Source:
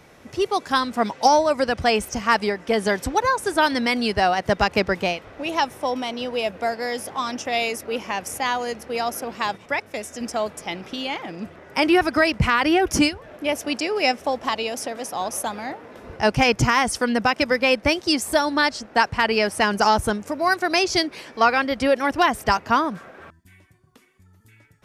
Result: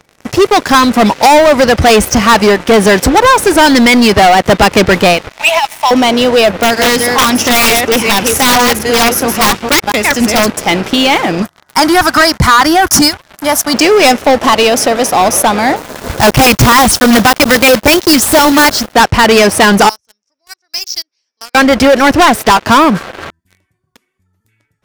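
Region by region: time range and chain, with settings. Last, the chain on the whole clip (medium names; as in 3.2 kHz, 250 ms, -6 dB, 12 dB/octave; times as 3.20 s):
5.29–5.91 s: rippled Chebyshev high-pass 630 Hz, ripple 9 dB + treble shelf 2.4 kHz +6 dB + compressor with a negative ratio -25 dBFS, ratio -0.5
6.53–10.50 s: chunks repeated in reverse 226 ms, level -5 dB + dynamic bell 610 Hz, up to -7 dB, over -38 dBFS, Q 1.5 + integer overflow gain 20 dB
11.42–13.74 s: tilt EQ +2 dB/octave + static phaser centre 1.1 kHz, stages 4
15.76–18.95 s: block-companded coder 3-bit + LFO notch square 7.8 Hz 410–2300 Hz
19.89–21.55 s: band-pass filter 5.5 kHz, Q 9 + tilt EQ -2.5 dB/octave
22.20–22.67 s: high-pass 220 Hz 6 dB/octave + loudspeaker Doppler distortion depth 0.16 ms
whole clip: dynamic bell 8.6 kHz, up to -4 dB, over -44 dBFS, Q 1.2; waveshaping leveller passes 5; trim +3 dB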